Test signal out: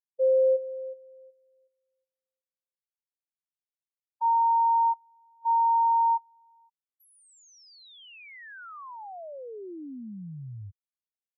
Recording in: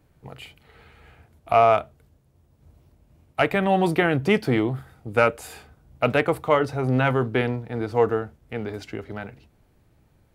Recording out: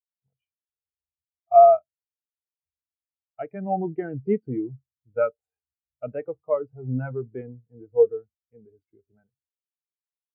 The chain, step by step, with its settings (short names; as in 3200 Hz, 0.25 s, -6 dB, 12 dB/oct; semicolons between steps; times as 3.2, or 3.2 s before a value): spectral expander 2.5:1